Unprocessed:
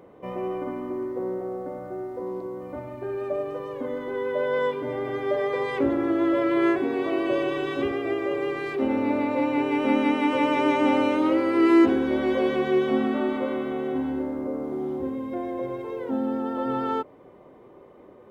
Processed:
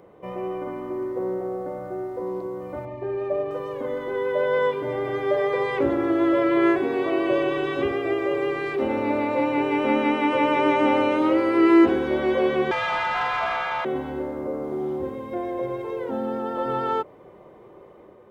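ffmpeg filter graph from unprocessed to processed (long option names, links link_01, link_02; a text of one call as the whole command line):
ffmpeg -i in.wav -filter_complex "[0:a]asettb=1/sr,asplit=3[link_01][link_02][link_03];[link_01]atrim=end=2.854[link_04];[link_02]atrim=start=2.85:end=3.51,asetpts=PTS-STARTPTS,afade=type=in:duration=0.004:curve=qsin,afade=type=out:start_time=0.656:duration=0.004:curve=qsin,adynamicsmooth=sensitivity=2.5:basefreq=4200,asuperstop=centerf=1400:order=8:qfactor=3.6[link_05];[link_03]atrim=start=3.506[link_06];[link_04][link_05]acrossfade=duration=0.004:curve1=hsin:curve2=qsin[link_07];[link_07][link_06]acrossfade=duration=0.004:curve1=qsin:curve2=hsin,asettb=1/sr,asplit=3[link_08][link_09][link_10];[link_08]atrim=end=12.714[link_11];[link_09]atrim=start=12.71:end=13.85,asetpts=PTS-STARTPTS,afade=type=in:duration=0.004:curve=qsin,afade=type=out:start_time=1.136:duration=0.004:curve=qsin,highpass=frequency=690:width=0.5412,highpass=frequency=690:width=1.3066,afreqshift=140,asplit=2[link_12][link_13];[link_13]highpass=frequency=720:poles=1,volume=20dB,asoftclip=type=tanh:threshold=-19.5dB[link_14];[link_12][link_14]amix=inputs=2:normalize=0,lowpass=frequency=4200:poles=1,volume=-6dB[link_15];[link_10]atrim=start=13.846[link_16];[link_11][link_15]acrossfade=duration=0.004:curve1=hsin:curve2=qsin[link_17];[link_17][link_16]acrossfade=duration=0.004:curve1=qsin:curve2=hsin,acrossover=split=3500[link_18][link_19];[link_19]acompressor=threshold=-52dB:ratio=4:attack=1:release=60[link_20];[link_18][link_20]amix=inputs=2:normalize=0,equalizer=frequency=260:width=7.8:gain=-11.5,dynaudnorm=framelen=560:gausssize=3:maxgain=3dB" out.wav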